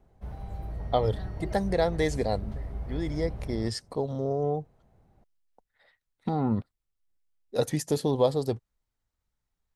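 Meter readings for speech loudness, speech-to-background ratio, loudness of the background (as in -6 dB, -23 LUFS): -29.5 LUFS, 9.0 dB, -38.5 LUFS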